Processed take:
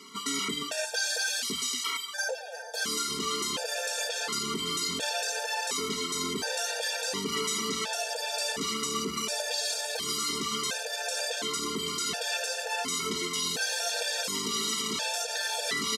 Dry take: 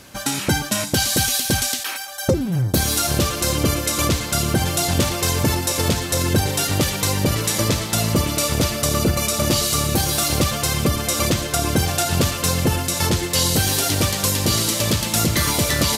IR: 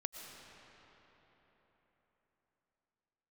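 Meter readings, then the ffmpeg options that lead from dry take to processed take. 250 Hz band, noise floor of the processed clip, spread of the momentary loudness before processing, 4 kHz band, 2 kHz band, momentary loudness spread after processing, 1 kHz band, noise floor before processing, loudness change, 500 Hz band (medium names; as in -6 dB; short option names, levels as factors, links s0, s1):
-16.0 dB, -38 dBFS, 3 LU, -7.0 dB, -6.0 dB, 3 LU, -9.0 dB, -29 dBFS, -10.5 dB, -11.0 dB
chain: -filter_complex "[0:a]aecho=1:1:4.5:0.74,acrossover=split=590|1100[s0][s1][s2];[s1]acompressor=threshold=0.0126:ratio=6[s3];[s0][s3][s2]amix=inputs=3:normalize=0,alimiter=limit=0.211:level=0:latency=1,asoftclip=type=tanh:threshold=0.15,highpass=370,lowpass=7200,afftfilt=real='re*gt(sin(2*PI*0.7*pts/sr)*(1-2*mod(floor(b*sr/1024/470),2)),0)':imag='im*gt(sin(2*PI*0.7*pts/sr)*(1-2*mod(floor(b*sr/1024/470),2)),0)':win_size=1024:overlap=0.75"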